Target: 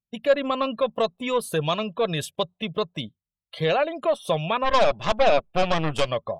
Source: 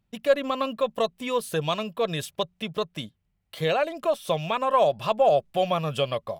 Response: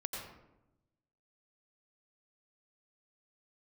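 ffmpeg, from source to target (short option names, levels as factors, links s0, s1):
-filter_complex "[0:a]asplit=2[s0][s1];[s1]asoftclip=type=hard:threshold=0.0562,volume=0.422[s2];[s0][s2]amix=inputs=2:normalize=0,asplit=3[s3][s4][s5];[s3]afade=t=out:st=4.64:d=0.02[s6];[s4]aeval=exprs='0.398*(cos(1*acos(clip(val(0)/0.398,-1,1)))-cos(1*PI/2))+0.0282*(cos(3*acos(clip(val(0)/0.398,-1,1)))-cos(3*PI/2))+0.0631*(cos(8*acos(clip(val(0)/0.398,-1,1)))-cos(8*PI/2))':c=same,afade=t=in:st=4.64:d=0.02,afade=t=out:st=6.08:d=0.02[s7];[s5]afade=t=in:st=6.08:d=0.02[s8];[s6][s7][s8]amix=inputs=3:normalize=0,afftdn=nr=25:nf=-44"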